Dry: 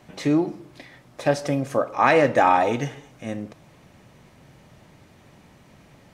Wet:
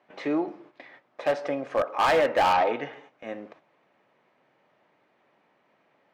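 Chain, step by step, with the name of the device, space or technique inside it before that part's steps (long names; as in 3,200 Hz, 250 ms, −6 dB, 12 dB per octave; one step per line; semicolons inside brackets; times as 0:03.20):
walkie-talkie (band-pass filter 430–2,400 Hz; hard clipping −17.5 dBFS, distortion −10 dB; noise gate −51 dBFS, range −9 dB)
0:02.53–0:02.93: low-pass filter 5,200 Hz 24 dB per octave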